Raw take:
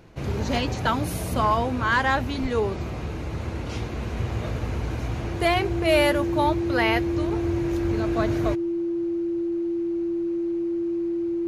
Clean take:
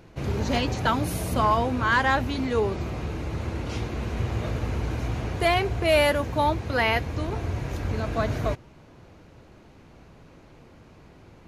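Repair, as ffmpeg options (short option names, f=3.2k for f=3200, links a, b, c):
-filter_complex "[0:a]bandreject=f=340:w=30,asplit=3[a][b][c];[a]afade=t=out:st=2.41:d=0.02[d];[b]highpass=f=140:w=0.5412,highpass=f=140:w=1.3066,afade=t=in:st=2.41:d=0.02,afade=t=out:st=2.53:d=0.02[e];[c]afade=t=in:st=2.53:d=0.02[f];[d][e][f]amix=inputs=3:normalize=0"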